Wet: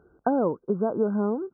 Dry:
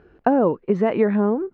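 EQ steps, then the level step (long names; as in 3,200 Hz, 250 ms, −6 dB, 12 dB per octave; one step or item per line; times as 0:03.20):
high-pass filter 51 Hz
linear-phase brick-wall low-pass 1,600 Hz
−6.0 dB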